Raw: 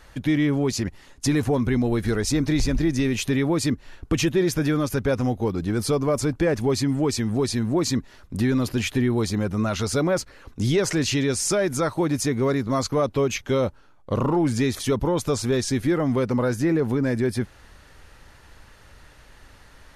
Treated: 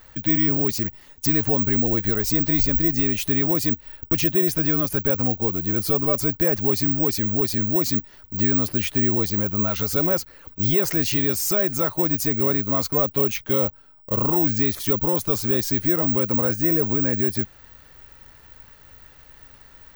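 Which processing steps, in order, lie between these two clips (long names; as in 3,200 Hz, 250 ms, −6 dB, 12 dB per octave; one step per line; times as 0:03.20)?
bad sample-rate conversion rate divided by 2×, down none, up zero stuff
level −2 dB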